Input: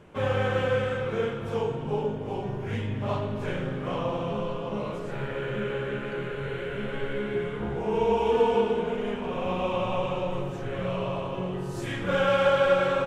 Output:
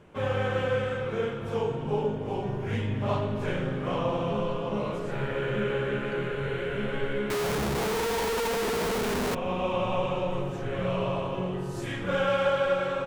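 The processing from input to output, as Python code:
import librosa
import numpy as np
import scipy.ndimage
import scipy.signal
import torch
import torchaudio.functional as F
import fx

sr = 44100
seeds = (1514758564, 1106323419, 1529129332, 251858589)

y = fx.rider(x, sr, range_db=4, speed_s=2.0)
y = fx.schmitt(y, sr, flips_db=-42.0, at=(7.3, 9.35))
y = y * librosa.db_to_amplitude(-1.5)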